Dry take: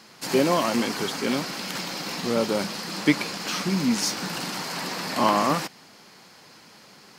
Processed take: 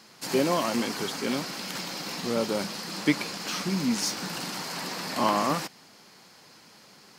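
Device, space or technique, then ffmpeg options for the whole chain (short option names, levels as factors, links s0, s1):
exciter from parts: -filter_complex "[0:a]asplit=2[s0][s1];[s1]highpass=3100,asoftclip=type=tanh:threshold=0.0299,volume=0.266[s2];[s0][s2]amix=inputs=2:normalize=0,volume=0.668"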